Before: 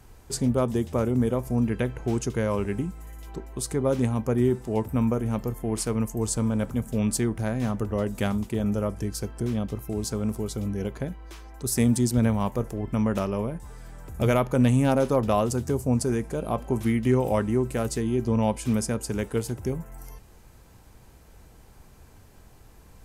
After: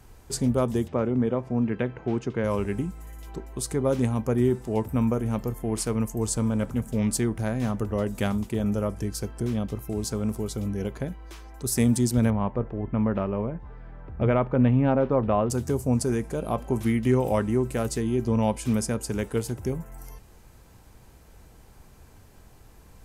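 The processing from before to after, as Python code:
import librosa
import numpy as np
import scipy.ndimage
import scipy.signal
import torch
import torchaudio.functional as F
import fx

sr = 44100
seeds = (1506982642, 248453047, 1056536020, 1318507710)

y = fx.bandpass_edges(x, sr, low_hz=120.0, high_hz=2900.0, at=(0.87, 2.43), fade=0.02)
y = fx.doppler_dist(y, sr, depth_ms=0.12, at=(6.59, 7.11))
y = fx.bessel_lowpass(y, sr, hz=1900.0, order=4, at=(12.3, 15.5))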